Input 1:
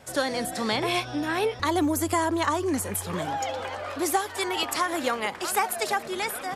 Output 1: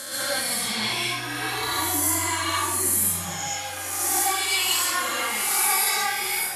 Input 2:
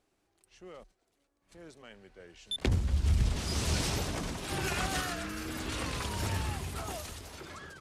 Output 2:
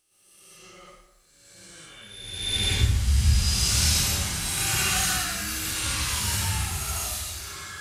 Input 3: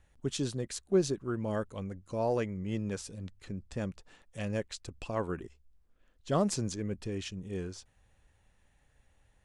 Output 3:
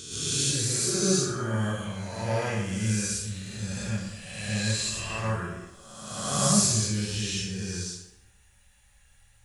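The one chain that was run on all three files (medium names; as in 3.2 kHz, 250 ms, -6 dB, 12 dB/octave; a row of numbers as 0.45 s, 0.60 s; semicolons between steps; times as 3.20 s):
reverse spectral sustain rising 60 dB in 1.30 s; amplifier tone stack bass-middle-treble 5-5-5; harmonic-percussive split percussive -16 dB; treble shelf 4.5 kHz +7 dB; plate-style reverb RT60 0.88 s, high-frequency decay 0.65×, pre-delay 105 ms, DRR -8.5 dB; peak normalisation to -9 dBFS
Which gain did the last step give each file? +2.5 dB, +9.0 dB, +10.0 dB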